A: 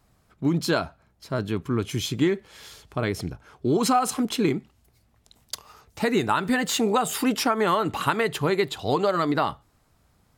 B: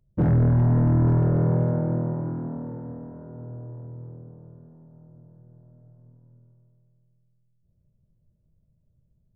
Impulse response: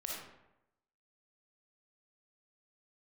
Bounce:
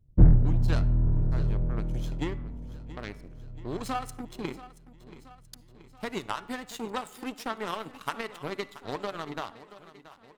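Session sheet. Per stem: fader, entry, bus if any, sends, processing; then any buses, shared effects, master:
-5.0 dB, 0.00 s, send -18 dB, echo send -15.5 dB, power-law waveshaper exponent 2
-5.0 dB, 0.00 s, no send, no echo send, octave divider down 2 oct, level +2 dB; bass shelf 190 Hz +12 dB; auto duck -13 dB, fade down 0.20 s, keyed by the first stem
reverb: on, RT60 0.90 s, pre-delay 15 ms
echo: feedback delay 679 ms, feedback 57%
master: de-hum 285.3 Hz, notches 10

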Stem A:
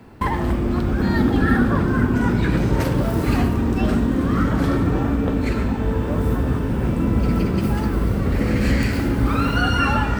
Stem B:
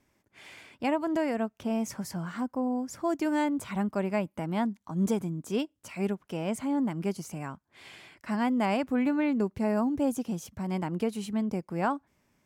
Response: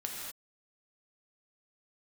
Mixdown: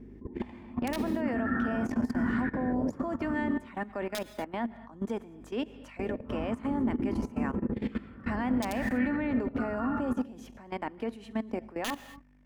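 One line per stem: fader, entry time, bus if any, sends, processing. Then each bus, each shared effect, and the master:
-15.0 dB, 0.00 s, muted 3.51–5.99 s, send -5.5 dB, step-sequenced low-pass 2.4 Hz 390–1800 Hz; auto duck -12 dB, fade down 0.50 s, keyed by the second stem
+2.5 dB, 0.00 s, send -12 dB, three-band isolator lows -22 dB, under 340 Hz, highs -15 dB, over 3.5 kHz; integer overflow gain 19.5 dB; hum 50 Hz, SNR 19 dB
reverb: on, pre-delay 3 ms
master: level held to a coarse grid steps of 17 dB; small resonant body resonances 240/1800 Hz, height 11 dB, ringing for 45 ms

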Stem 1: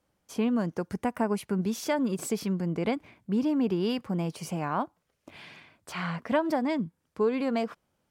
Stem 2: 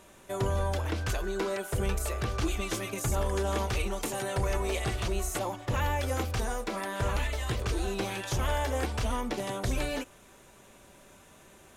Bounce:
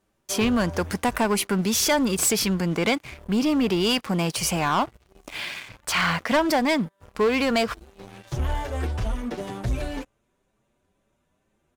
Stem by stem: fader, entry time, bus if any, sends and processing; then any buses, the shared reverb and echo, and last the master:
-3.0 dB, 0.00 s, no send, tilt shelf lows -10 dB, about 720 Hz
-10.0 dB, 0.00 s, no send, treble shelf 5.5 kHz -6.5 dB; endless flanger 7.4 ms +2.1 Hz; auto duck -18 dB, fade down 1.65 s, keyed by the first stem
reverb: none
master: bass shelf 430 Hz +6.5 dB; waveshaping leveller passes 3

